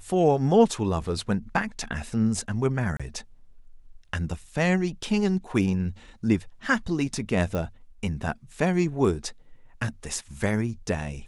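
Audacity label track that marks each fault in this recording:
2.970000	3.000000	drop-out 26 ms
7.550000	7.550000	click −18 dBFS

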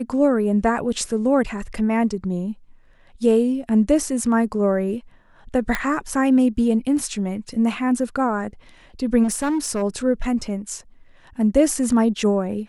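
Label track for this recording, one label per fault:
5.750000	5.750000	click −8 dBFS
9.230000	9.830000	clipping −18.5 dBFS

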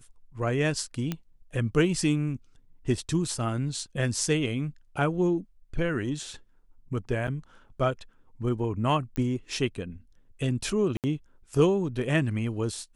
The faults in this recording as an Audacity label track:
1.120000	1.120000	click −16 dBFS
7.270000	7.280000	drop-out 7 ms
9.160000	9.160000	click −18 dBFS
10.970000	11.040000	drop-out 68 ms

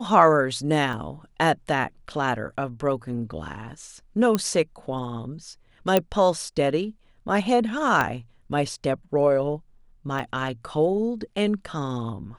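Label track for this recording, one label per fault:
0.930000	0.930000	drop-out 2.2 ms
4.350000	4.350000	click −9 dBFS
5.970000	5.970000	click −6 dBFS
8.010000	8.010000	click −9 dBFS
10.190000	10.190000	drop-out 4.5 ms

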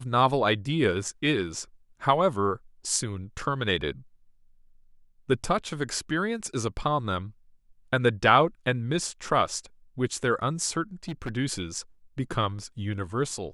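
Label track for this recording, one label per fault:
11.080000	11.300000	clipping −28 dBFS

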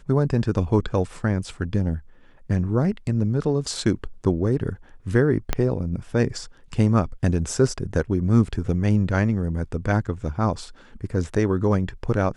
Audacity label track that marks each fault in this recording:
5.530000	5.530000	click −7 dBFS

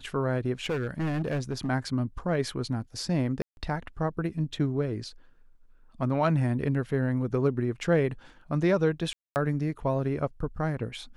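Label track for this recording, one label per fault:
0.650000	1.690000	clipping −25 dBFS
3.420000	3.570000	drop-out 151 ms
9.130000	9.360000	drop-out 229 ms

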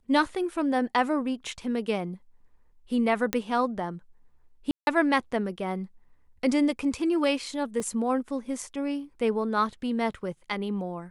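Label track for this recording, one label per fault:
3.330000	3.330000	click −9 dBFS
4.710000	4.870000	drop-out 161 ms
7.800000	7.800000	drop-out 2 ms

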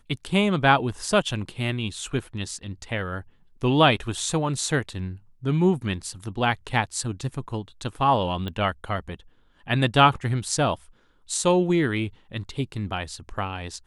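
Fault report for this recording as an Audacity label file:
8.480000	8.480000	click −21 dBFS

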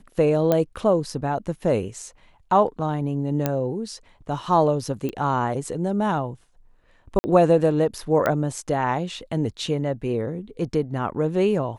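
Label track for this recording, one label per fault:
0.520000	0.520000	click −8 dBFS
3.460000	3.460000	click −8 dBFS
5.090000	5.090000	click −17 dBFS
7.190000	7.240000	drop-out 50 ms
8.260000	8.260000	click −10 dBFS

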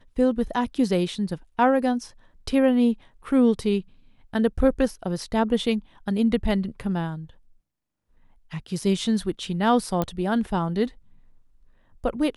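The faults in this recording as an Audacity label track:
10.020000	10.020000	click −12 dBFS

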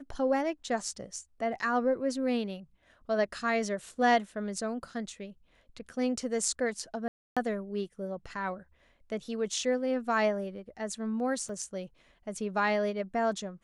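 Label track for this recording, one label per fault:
7.080000	7.370000	drop-out 286 ms
11.490000	11.490000	drop-out 3.5 ms

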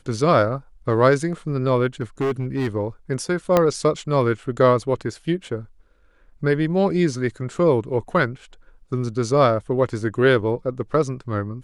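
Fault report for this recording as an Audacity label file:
2.010000	2.680000	clipping −18.5 dBFS
3.570000	3.570000	click −4 dBFS

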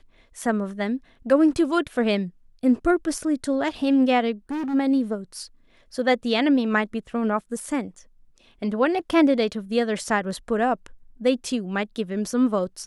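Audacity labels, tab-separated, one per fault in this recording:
4.510000	4.750000	clipping −25.5 dBFS

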